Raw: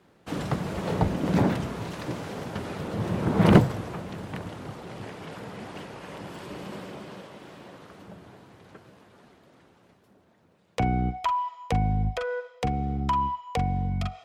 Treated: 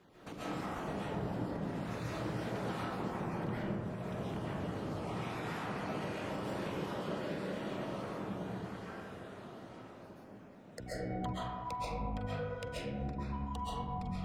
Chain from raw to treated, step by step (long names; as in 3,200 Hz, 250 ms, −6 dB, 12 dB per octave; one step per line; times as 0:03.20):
time-frequency cells dropped at random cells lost 28%
downward compressor 12 to 1, threshold −42 dBFS, peak gain reduction 31 dB
comb and all-pass reverb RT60 1.9 s, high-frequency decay 0.3×, pre-delay 95 ms, DRR −10 dB
level −3.5 dB